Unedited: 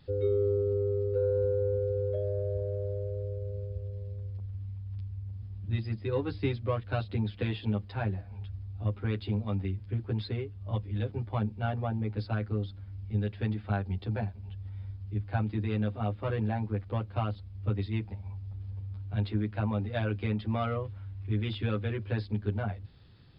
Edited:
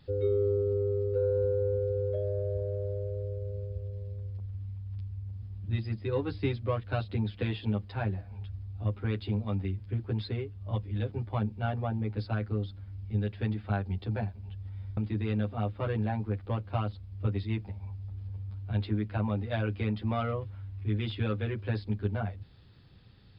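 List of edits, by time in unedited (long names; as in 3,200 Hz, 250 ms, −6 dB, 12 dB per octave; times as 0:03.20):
0:14.97–0:15.40: remove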